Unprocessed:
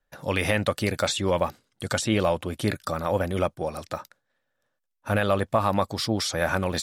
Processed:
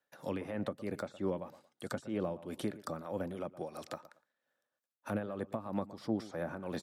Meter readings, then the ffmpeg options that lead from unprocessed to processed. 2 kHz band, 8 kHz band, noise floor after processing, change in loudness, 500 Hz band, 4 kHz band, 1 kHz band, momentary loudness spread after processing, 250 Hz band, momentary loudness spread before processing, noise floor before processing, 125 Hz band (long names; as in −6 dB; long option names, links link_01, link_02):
−19.0 dB, −22.0 dB, below −85 dBFS, −13.5 dB, −13.0 dB, −22.5 dB, −16.5 dB, 8 LU, −9.5 dB, 9 LU, −78 dBFS, −15.5 dB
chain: -filter_complex "[0:a]highpass=220,acrossover=split=1500[link_01][link_02];[link_02]acompressor=threshold=-42dB:ratio=6[link_03];[link_01][link_03]amix=inputs=2:normalize=0,tremolo=f=3.1:d=0.68,asplit=2[link_04][link_05];[link_05]adelay=114,lowpass=frequency=2000:poles=1,volume=-18dB,asplit=2[link_06][link_07];[link_07]adelay=114,lowpass=frequency=2000:poles=1,volume=0.18[link_08];[link_04][link_06][link_08]amix=inputs=3:normalize=0,acrossover=split=330[link_09][link_10];[link_10]acompressor=threshold=-38dB:ratio=6[link_11];[link_09][link_11]amix=inputs=2:normalize=0,volume=-2dB"